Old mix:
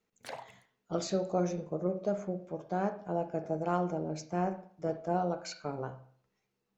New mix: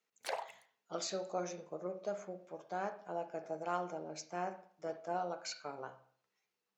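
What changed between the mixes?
speech: add high-pass 1.1 kHz 6 dB/octave; background +4.0 dB

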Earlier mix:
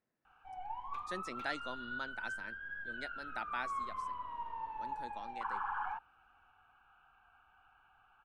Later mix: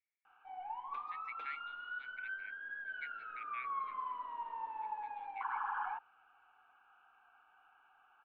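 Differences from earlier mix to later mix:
speech: add ladder band-pass 2.3 kHz, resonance 90%; master: add three-band isolator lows -21 dB, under 250 Hz, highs -22 dB, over 4 kHz

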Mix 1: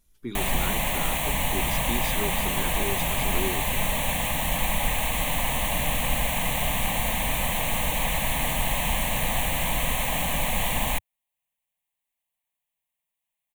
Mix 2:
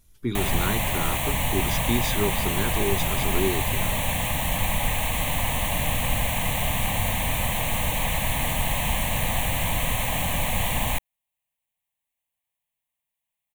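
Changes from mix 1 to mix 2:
speech +6.0 dB; master: add peaking EQ 97 Hz +14.5 dB 0.43 oct

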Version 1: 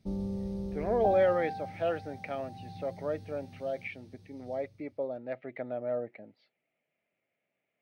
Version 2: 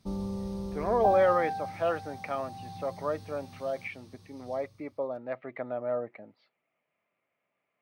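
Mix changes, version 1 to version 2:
background: add treble shelf 2.5 kHz +9.5 dB; master: add peaking EQ 1.1 kHz +14.5 dB 0.56 oct

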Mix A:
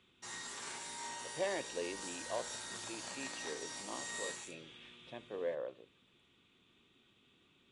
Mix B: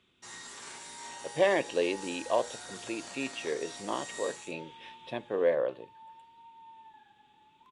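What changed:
speech +12.0 dB; second sound: unmuted

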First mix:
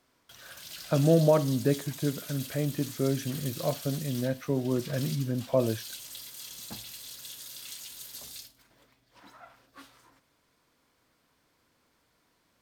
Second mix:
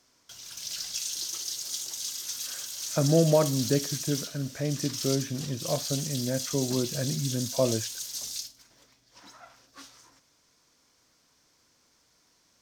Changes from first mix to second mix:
speech: entry +2.05 s; background: add peaking EQ 5.9 kHz +14.5 dB 0.87 oct

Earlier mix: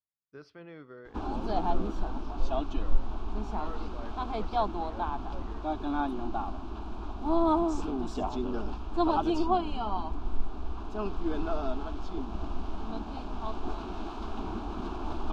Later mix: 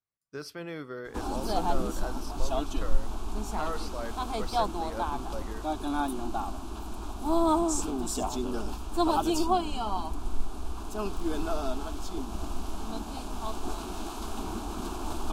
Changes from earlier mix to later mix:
speech +8.0 dB; master: remove distance through air 230 m

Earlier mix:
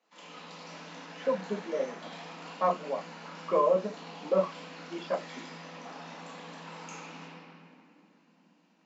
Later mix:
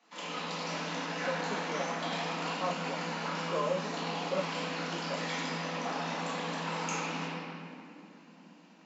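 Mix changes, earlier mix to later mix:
speech -8.0 dB; background +9.5 dB

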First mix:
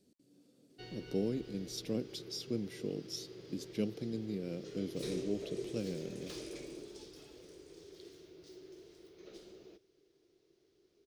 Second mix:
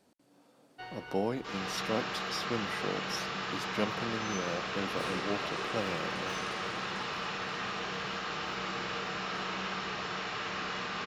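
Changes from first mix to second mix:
first sound -4.5 dB; second sound: unmuted; reverb: on, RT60 2.3 s; master: remove FFT filter 400 Hz 0 dB, 900 Hz -24 dB, 4.4 kHz -3 dB

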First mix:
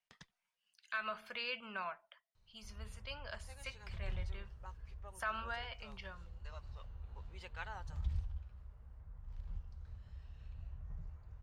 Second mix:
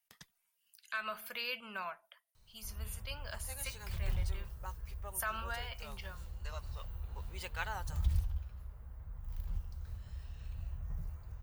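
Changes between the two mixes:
background +6.0 dB; master: remove distance through air 110 m

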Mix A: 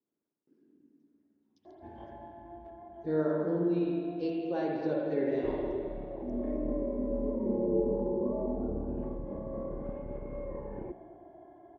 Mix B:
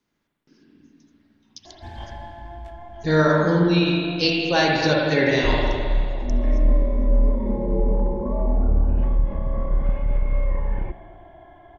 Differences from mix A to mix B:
speech +7.5 dB; master: remove band-pass filter 370 Hz, Q 1.6

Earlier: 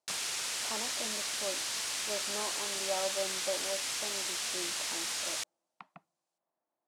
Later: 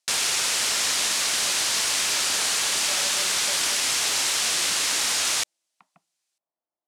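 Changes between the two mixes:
speech -7.0 dB; background +12.0 dB

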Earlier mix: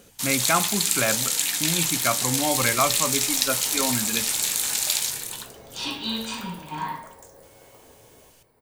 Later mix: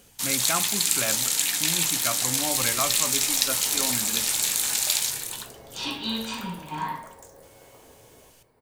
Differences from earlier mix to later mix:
speech -6.5 dB; second sound: add treble shelf 8.8 kHz -9 dB

